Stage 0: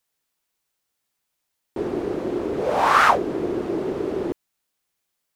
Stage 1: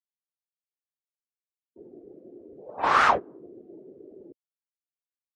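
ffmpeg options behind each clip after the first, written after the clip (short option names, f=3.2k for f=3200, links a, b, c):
-af "agate=range=-17dB:threshold=-18dB:ratio=16:detection=peak,afftdn=nr=27:nf=-41,volume=-4dB"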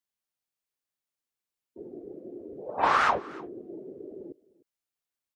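-af "acompressor=threshold=-25dB:ratio=6,aecho=1:1:302:0.0794,volume=5dB"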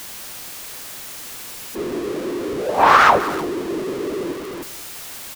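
-filter_complex "[0:a]aeval=exprs='val(0)+0.5*0.0141*sgn(val(0))':c=same,asplit=2[a][b];[b]adelay=186.6,volume=-17dB,highshelf=f=4k:g=-4.2[c];[a][c]amix=inputs=2:normalize=0,alimiter=level_in=13dB:limit=-1dB:release=50:level=0:latency=1,volume=-1dB"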